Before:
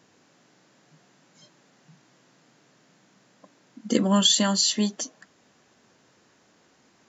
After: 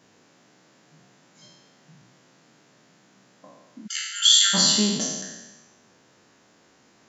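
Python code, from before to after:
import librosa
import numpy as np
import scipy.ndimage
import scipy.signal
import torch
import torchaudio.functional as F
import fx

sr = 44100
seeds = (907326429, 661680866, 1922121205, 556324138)

y = fx.spec_trails(x, sr, decay_s=1.19)
y = fx.brickwall_highpass(y, sr, low_hz=1300.0, at=(3.86, 4.53), fade=0.02)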